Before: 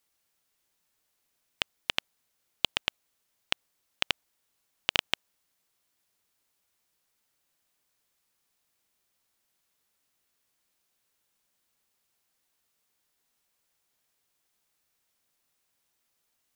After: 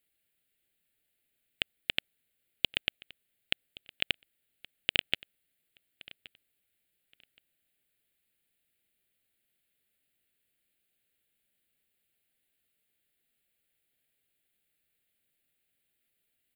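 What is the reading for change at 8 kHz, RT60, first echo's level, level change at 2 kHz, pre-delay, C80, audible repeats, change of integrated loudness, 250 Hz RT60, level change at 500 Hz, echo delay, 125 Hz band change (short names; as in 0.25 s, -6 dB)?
-9.5 dB, none, -21.5 dB, -0.5 dB, none, none, 1, -1.0 dB, none, -3.5 dB, 1.122 s, 0.0 dB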